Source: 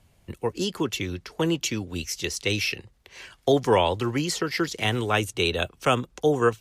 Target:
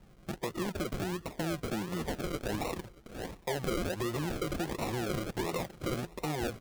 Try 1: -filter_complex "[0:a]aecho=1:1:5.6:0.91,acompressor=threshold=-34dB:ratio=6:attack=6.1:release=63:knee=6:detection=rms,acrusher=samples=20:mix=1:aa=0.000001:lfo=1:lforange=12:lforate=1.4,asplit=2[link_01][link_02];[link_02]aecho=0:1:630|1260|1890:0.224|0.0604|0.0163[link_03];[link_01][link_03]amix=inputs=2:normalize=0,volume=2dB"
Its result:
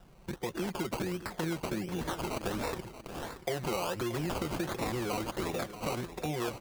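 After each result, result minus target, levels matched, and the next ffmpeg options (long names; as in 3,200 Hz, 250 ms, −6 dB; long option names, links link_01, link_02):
echo-to-direct +10 dB; sample-and-hold swept by an LFO: distortion −5 dB
-filter_complex "[0:a]aecho=1:1:5.6:0.91,acompressor=threshold=-34dB:ratio=6:attack=6.1:release=63:knee=6:detection=rms,acrusher=samples=20:mix=1:aa=0.000001:lfo=1:lforange=12:lforate=1.4,asplit=2[link_01][link_02];[link_02]aecho=0:1:630|1260:0.0708|0.0191[link_03];[link_01][link_03]amix=inputs=2:normalize=0,volume=2dB"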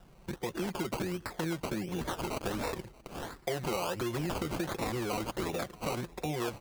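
sample-and-hold swept by an LFO: distortion −5 dB
-filter_complex "[0:a]aecho=1:1:5.6:0.91,acompressor=threshold=-34dB:ratio=6:attack=6.1:release=63:knee=6:detection=rms,acrusher=samples=39:mix=1:aa=0.000001:lfo=1:lforange=23.4:lforate=1.4,asplit=2[link_01][link_02];[link_02]aecho=0:1:630|1260:0.0708|0.0191[link_03];[link_01][link_03]amix=inputs=2:normalize=0,volume=2dB"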